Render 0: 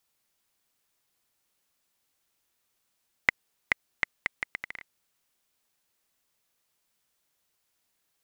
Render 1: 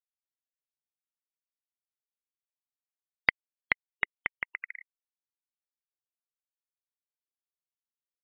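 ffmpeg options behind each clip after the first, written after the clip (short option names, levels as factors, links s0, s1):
-af "afftfilt=real='re*gte(hypot(re,im),0.0178)':imag='im*gte(hypot(re,im),0.0178)':win_size=1024:overlap=0.75"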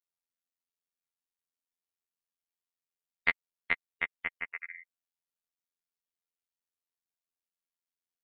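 -af "aecho=1:1:4.3:0.53,afftfilt=real='hypot(re,im)*cos(PI*b)':imag='0':win_size=2048:overlap=0.75"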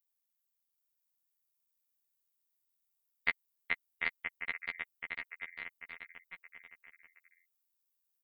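-af "aemphasis=mode=production:type=50fm,aecho=1:1:780|1404|1903|2303|2622:0.631|0.398|0.251|0.158|0.1,volume=0.531"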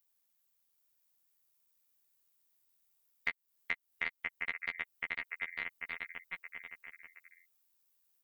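-af "acompressor=threshold=0.01:ratio=5,volume=2.24"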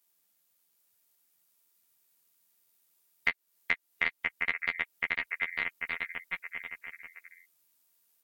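-af "volume=2.37" -ar 48000 -c:a libvorbis -b:a 64k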